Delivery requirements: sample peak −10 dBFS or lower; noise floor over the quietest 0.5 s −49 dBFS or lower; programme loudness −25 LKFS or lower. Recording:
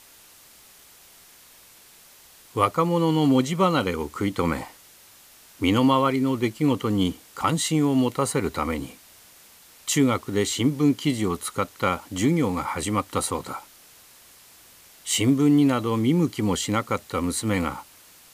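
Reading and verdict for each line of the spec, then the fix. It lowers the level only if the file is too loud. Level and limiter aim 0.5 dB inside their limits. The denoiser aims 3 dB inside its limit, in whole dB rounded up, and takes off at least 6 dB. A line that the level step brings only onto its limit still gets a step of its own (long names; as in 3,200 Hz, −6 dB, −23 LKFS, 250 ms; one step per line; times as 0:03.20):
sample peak −6.5 dBFS: out of spec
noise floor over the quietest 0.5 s −51 dBFS: in spec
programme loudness −23.5 LKFS: out of spec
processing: level −2 dB
brickwall limiter −10.5 dBFS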